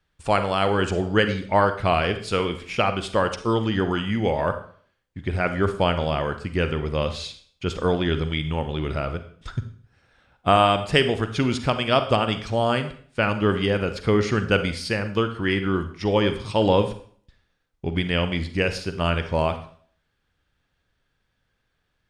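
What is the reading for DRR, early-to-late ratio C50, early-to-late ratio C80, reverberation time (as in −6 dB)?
9.0 dB, 11.0 dB, 14.5 dB, 0.50 s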